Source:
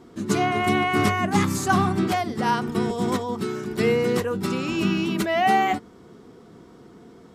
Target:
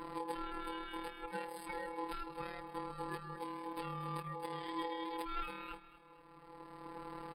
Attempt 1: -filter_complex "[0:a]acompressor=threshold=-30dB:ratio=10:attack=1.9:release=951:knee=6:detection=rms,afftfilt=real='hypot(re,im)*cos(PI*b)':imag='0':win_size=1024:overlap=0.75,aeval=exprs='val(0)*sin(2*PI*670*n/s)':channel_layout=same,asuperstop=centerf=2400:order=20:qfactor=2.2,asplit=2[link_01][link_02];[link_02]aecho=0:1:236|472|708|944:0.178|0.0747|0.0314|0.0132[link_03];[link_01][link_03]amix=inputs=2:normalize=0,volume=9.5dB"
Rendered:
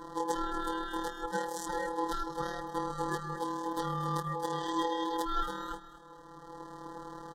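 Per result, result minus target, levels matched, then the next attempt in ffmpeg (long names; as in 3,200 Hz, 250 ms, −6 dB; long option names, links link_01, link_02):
downward compressor: peak gain reduction −8.5 dB; 8,000 Hz band +6.0 dB
-filter_complex "[0:a]acompressor=threshold=-39.5dB:ratio=10:attack=1.9:release=951:knee=6:detection=rms,afftfilt=real='hypot(re,im)*cos(PI*b)':imag='0':win_size=1024:overlap=0.75,aeval=exprs='val(0)*sin(2*PI*670*n/s)':channel_layout=same,asuperstop=centerf=2400:order=20:qfactor=2.2,asplit=2[link_01][link_02];[link_02]aecho=0:1:236|472|708|944:0.178|0.0747|0.0314|0.0132[link_03];[link_01][link_03]amix=inputs=2:normalize=0,volume=9.5dB"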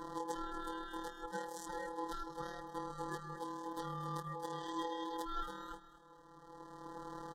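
8,000 Hz band +6.0 dB
-filter_complex "[0:a]acompressor=threshold=-39.5dB:ratio=10:attack=1.9:release=951:knee=6:detection=rms,afftfilt=real='hypot(re,im)*cos(PI*b)':imag='0':win_size=1024:overlap=0.75,aeval=exprs='val(0)*sin(2*PI*670*n/s)':channel_layout=same,asuperstop=centerf=6400:order=20:qfactor=2.2,asplit=2[link_01][link_02];[link_02]aecho=0:1:236|472|708|944:0.178|0.0747|0.0314|0.0132[link_03];[link_01][link_03]amix=inputs=2:normalize=0,volume=9.5dB"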